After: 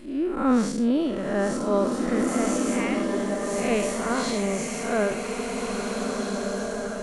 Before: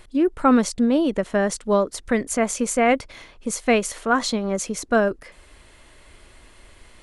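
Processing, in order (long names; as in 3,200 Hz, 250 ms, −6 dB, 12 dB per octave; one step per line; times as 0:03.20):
spectrum smeared in time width 176 ms
0:02.57–0:03.58: Chebyshev high-pass with heavy ripple 780 Hz, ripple 3 dB
slow-attack reverb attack 1,990 ms, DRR 1 dB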